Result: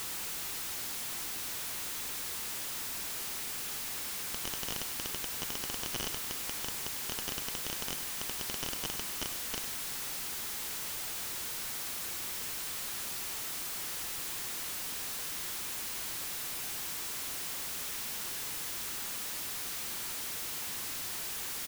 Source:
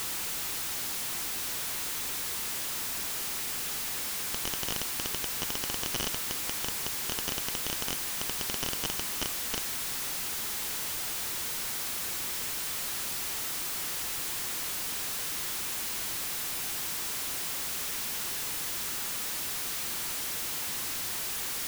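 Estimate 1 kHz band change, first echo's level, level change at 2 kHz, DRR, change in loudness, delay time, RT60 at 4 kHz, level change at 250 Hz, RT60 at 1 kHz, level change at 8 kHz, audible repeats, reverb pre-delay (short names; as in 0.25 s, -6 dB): -4.0 dB, -11.5 dB, -4.0 dB, none, -4.0 dB, 0.1 s, none, -4.0 dB, none, -4.0 dB, 1, none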